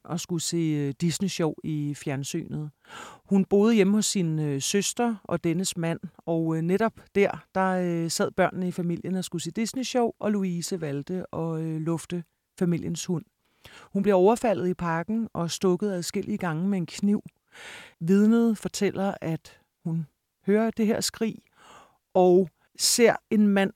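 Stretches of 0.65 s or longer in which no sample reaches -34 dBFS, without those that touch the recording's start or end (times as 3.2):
21.35–22.15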